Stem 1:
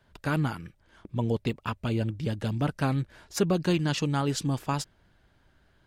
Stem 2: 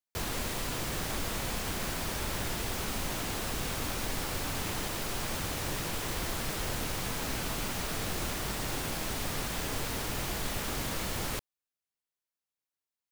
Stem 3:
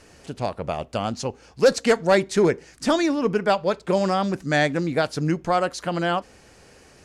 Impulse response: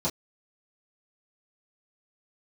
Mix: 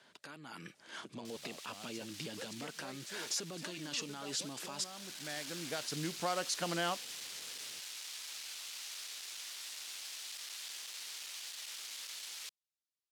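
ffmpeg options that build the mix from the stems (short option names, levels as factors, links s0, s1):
-filter_complex "[0:a]lowpass=8700,acompressor=threshold=0.0398:ratio=6,alimiter=level_in=3.35:limit=0.0631:level=0:latency=1:release=13,volume=0.299,volume=1.06,asplit=2[s0][s1];[1:a]volume=47.3,asoftclip=hard,volume=0.0211,bandpass=f=4000:t=q:w=0.85:csg=0,adelay=1100,volume=0.133[s2];[2:a]acompressor=threshold=0.1:ratio=6,adelay=750,volume=0.119[s3];[s1]apad=whole_len=343863[s4];[s3][s4]sidechaincompress=threshold=0.00158:ratio=6:attack=16:release=1160[s5];[s0][s2]amix=inputs=2:normalize=0,highpass=230,alimiter=level_in=8.41:limit=0.0631:level=0:latency=1:release=491,volume=0.119,volume=1[s6];[s5][s6]amix=inputs=2:normalize=0,highpass=140,highshelf=f=2400:g=12,dynaudnorm=f=120:g=9:m=2.24"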